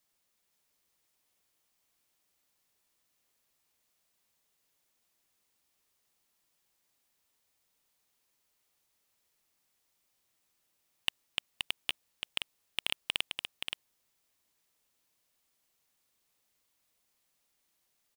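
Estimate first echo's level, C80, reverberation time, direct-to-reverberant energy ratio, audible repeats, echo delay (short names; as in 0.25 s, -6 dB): -5.5 dB, none, none, none, 1, 0.525 s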